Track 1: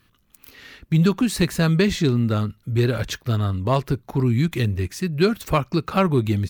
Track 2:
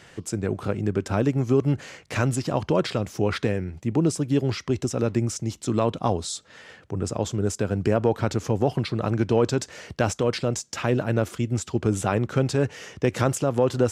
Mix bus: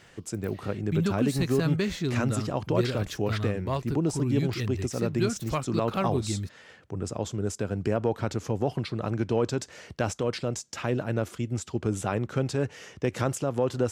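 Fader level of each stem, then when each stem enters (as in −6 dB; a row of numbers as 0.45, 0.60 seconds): −9.5, −5.0 decibels; 0.00, 0.00 seconds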